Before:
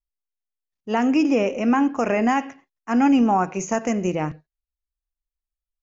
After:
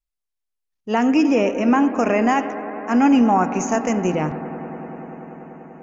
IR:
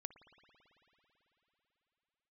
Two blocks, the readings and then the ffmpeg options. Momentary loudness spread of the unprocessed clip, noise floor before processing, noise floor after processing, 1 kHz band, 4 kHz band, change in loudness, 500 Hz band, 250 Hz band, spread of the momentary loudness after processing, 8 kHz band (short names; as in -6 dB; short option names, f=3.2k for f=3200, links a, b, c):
8 LU, under -85 dBFS, -81 dBFS, +3.0 dB, +2.5 dB, +2.5 dB, +3.0 dB, +2.5 dB, 18 LU, n/a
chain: -filter_complex "[1:a]atrim=start_sample=2205,asetrate=25578,aresample=44100[a];[0:a][a]afir=irnorm=-1:irlink=0,volume=5dB"